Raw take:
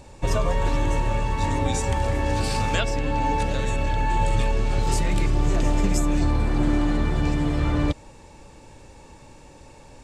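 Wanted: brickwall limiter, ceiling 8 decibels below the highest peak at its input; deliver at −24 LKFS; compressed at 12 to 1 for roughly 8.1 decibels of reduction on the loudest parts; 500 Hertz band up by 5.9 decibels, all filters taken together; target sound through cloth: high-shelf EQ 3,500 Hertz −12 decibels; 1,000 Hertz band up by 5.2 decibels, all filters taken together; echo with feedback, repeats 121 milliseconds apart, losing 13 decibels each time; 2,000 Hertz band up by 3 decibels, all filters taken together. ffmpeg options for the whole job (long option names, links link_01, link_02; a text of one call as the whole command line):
ffmpeg -i in.wav -af "equalizer=frequency=500:width_type=o:gain=6,equalizer=frequency=1000:width_type=o:gain=4,equalizer=frequency=2000:width_type=o:gain=6,acompressor=threshold=-23dB:ratio=12,alimiter=limit=-22dB:level=0:latency=1,highshelf=frequency=3500:gain=-12,aecho=1:1:121|242|363:0.224|0.0493|0.0108,volume=9dB" out.wav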